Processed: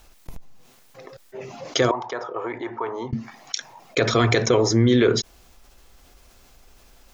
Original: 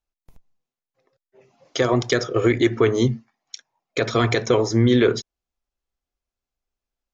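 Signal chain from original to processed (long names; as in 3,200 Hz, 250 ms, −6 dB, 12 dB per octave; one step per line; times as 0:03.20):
0:01.91–0:03.13: resonant band-pass 910 Hz, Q 8.3
envelope flattener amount 50%
level −1.5 dB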